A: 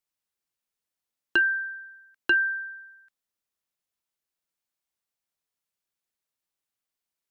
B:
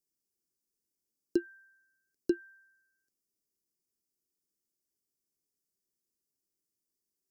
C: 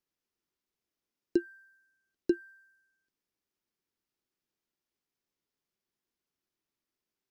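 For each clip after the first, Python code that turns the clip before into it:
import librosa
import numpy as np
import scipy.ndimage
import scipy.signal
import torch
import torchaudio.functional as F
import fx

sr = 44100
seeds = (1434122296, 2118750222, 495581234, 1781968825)

y1 = fx.curve_eq(x, sr, hz=(110.0, 380.0, 1000.0, 3100.0, 4900.0), db=(0, 8, -29, -29, 1))
y2 = scipy.ndimage.median_filter(y1, 5, mode='constant')
y2 = F.gain(torch.from_numpy(y2), 1.5).numpy()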